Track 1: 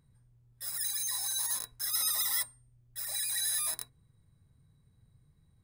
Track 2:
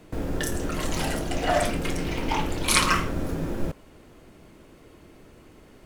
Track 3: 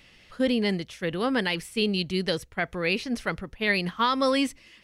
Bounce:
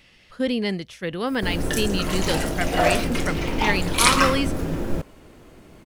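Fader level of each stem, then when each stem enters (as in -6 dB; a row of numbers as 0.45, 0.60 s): -16.0, +3.0, +0.5 dB; 0.65, 1.30, 0.00 s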